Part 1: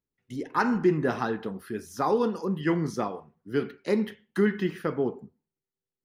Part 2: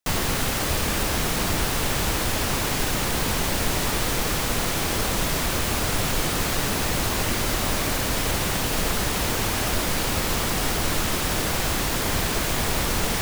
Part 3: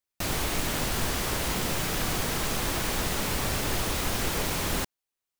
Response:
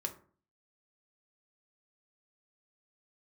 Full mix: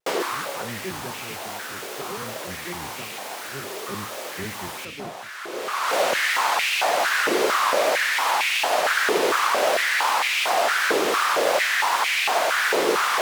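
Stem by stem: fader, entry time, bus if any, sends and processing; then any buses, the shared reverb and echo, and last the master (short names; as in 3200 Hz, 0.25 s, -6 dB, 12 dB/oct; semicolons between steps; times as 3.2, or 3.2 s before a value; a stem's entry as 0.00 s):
-12.5 dB, 0.00 s, no send, octaver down 1 oct, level +3 dB
+2.5 dB, 0.00 s, send -19 dB, LPF 3800 Hz 6 dB/oct; vibrato 2.9 Hz 35 cents; stepped high-pass 4.4 Hz 430–2400 Hz; auto duck -22 dB, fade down 0.80 s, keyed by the first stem
-6.0 dB, 0.00 s, no send, HPF 440 Hz 12 dB/oct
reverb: on, RT60 0.45 s, pre-delay 3 ms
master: HPF 130 Hz 12 dB/oct; vibrato 2.7 Hz 96 cents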